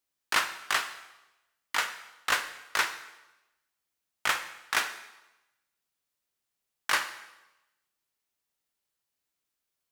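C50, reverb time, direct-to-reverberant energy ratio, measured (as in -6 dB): 11.5 dB, 1.0 s, 8.5 dB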